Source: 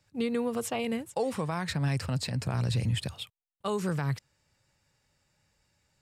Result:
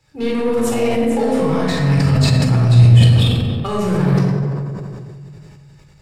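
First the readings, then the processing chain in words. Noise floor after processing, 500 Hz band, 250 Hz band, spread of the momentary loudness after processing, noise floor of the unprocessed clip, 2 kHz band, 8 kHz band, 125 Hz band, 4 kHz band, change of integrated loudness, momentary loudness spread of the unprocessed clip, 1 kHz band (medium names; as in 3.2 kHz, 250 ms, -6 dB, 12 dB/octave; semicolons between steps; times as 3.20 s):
-46 dBFS, +14.5 dB, +16.0 dB, 13 LU, -77 dBFS, +11.5 dB, +9.5 dB, +19.5 dB, +13.5 dB, +16.5 dB, 8 LU, +12.0 dB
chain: treble shelf 8.4 kHz -3.5 dB; in parallel at -2 dB: compression, threshold -38 dBFS, peak gain reduction 13 dB; on the sum: overload inside the chain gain 23.5 dB; on a send: feedback echo behind a low-pass 92 ms, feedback 75%, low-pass 1 kHz, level -6 dB; on the sum: simulated room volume 1300 m³, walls mixed, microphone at 4.1 m; decay stretcher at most 23 dB/s; trim +1 dB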